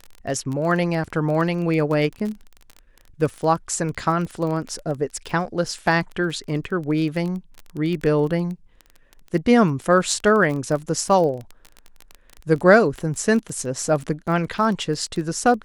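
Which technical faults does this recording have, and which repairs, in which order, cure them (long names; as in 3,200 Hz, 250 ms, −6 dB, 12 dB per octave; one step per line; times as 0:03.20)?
surface crackle 22 per second −27 dBFS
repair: click removal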